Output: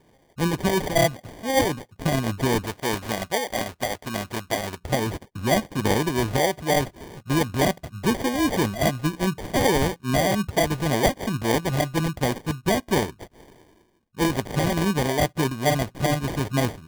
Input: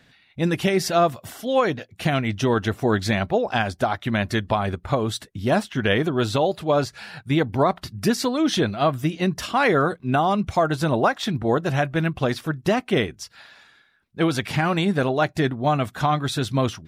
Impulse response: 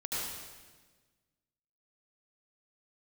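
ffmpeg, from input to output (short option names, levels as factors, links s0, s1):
-filter_complex "[0:a]acrusher=samples=33:mix=1:aa=0.000001,asettb=1/sr,asplit=3[s0][s1][s2];[s0]atrim=end=2.664[s3];[s1]atrim=start=2.66:end=4.81,asetpts=PTS-STARTPTS,afade=t=in:d=0.004:c=qsin,afade=t=out:st=2.146:d=0.004:c=qsin,lowshelf=f=410:g=-9[s4];[s2]atrim=start=4.806[s5];[s3][s4]acrossfade=d=0.004:c1=hsin:c2=qsin[s6];[s6][s5]acrossfade=d=0.004:c1=qsin:c2=hsin,volume=0.841"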